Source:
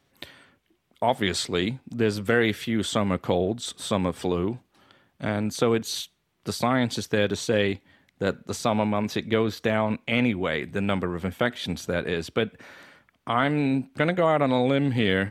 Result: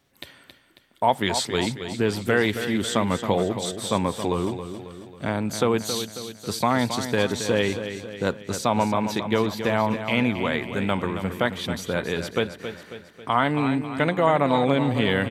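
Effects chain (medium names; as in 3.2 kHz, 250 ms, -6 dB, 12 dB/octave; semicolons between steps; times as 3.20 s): treble shelf 7.1 kHz +5 dB; on a send: feedback delay 272 ms, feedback 52%, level -9.5 dB; on the sum: dynamic bell 940 Hz, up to +7 dB, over -44 dBFS, Q 3.5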